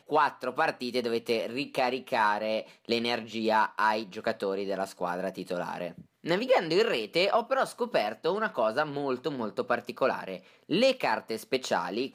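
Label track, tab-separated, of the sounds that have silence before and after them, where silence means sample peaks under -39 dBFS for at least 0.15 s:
2.880000	6.010000	sound
6.240000	10.370000	sound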